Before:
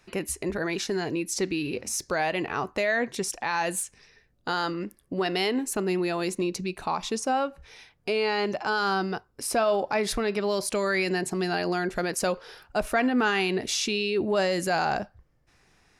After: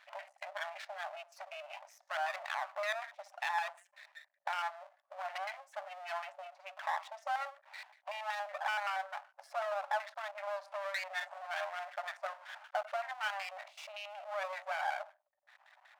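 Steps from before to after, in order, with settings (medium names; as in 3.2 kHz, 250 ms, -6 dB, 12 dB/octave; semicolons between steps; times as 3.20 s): spectral gate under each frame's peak -20 dB strong; compression 4:1, threshold -38 dBFS, peak gain reduction 15 dB; gated-style reverb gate 160 ms falling, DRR 9.5 dB; LFO low-pass square 5.3 Hz 910–1900 Hz; 11.08–11.90 s: doubling 41 ms -6 dB; half-wave rectifier; brick-wall FIR high-pass 560 Hz; trim +4 dB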